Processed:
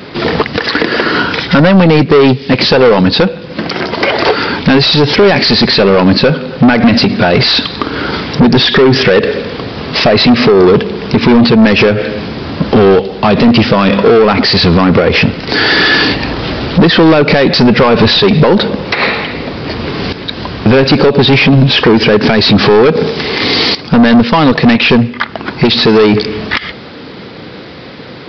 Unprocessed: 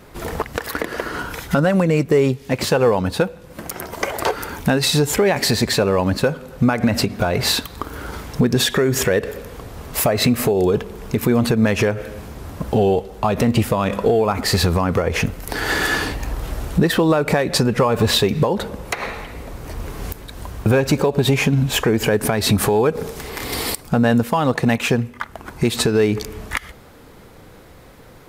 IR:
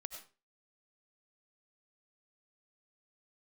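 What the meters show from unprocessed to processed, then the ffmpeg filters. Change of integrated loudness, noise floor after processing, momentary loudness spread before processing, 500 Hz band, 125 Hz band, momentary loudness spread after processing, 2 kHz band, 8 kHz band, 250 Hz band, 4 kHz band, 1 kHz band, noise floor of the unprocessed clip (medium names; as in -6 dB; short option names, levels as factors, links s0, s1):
+10.5 dB, -28 dBFS, 14 LU, +10.0 dB, +8.0 dB, 11 LU, +12.0 dB, no reading, +11.5 dB, +13.5 dB, +10.5 dB, -43 dBFS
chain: -af "highpass=210,equalizer=f=840:w=0.42:g=-10.5,aresample=11025,asoftclip=type=tanh:threshold=0.0473,aresample=44100,alimiter=level_in=18.8:limit=0.891:release=50:level=0:latency=1,volume=0.891"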